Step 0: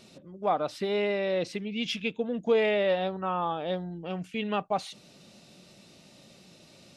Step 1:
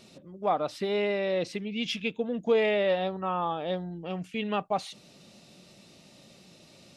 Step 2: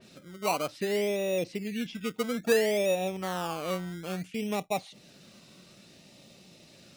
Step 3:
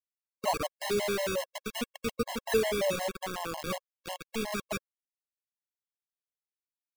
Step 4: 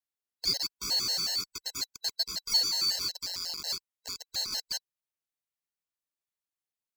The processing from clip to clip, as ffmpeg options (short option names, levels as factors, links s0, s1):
-af "bandreject=f=1500:w=28"
-filter_complex "[0:a]acrossover=split=960[s0][s1];[s0]acrusher=samples=20:mix=1:aa=0.000001:lfo=1:lforange=12:lforate=0.59[s2];[s1]acompressor=threshold=0.00708:ratio=6[s3];[s2][s3]amix=inputs=2:normalize=0,adynamicequalizer=threshold=0.00708:dfrequency=3000:dqfactor=0.7:tfrequency=3000:tqfactor=0.7:attack=5:release=100:ratio=0.375:range=2.5:mode=cutabove:tftype=highshelf"
-af "aecho=1:1:89:0.1,acrusher=bits=4:mix=0:aa=0.000001,afftfilt=real='re*gt(sin(2*PI*5.5*pts/sr)*(1-2*mod(floor(b*sr/1024/550),2)),0)':imag='im*gt(sin(2*PI*5.5*pts/sr)*(1-2*mod(floor(b*sr/1024/550),2)),0)':win_size=1024:overlap=0.75"
-af "afftfilt=real='real(if(lt(b,736),b+184*(1-2*mod(floor(b/184),2)),b),0)':imag='imag(if(lt(b,736),b+184*(1-2*mod(floor(b/184),2)),b),0)':win_size=2048:overlap=0.75"